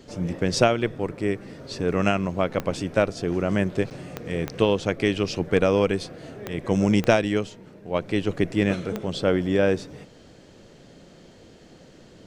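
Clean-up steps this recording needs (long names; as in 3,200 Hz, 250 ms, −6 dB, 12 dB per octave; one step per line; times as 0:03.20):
click removal
repair the gap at 0:03.90, 8.9 ms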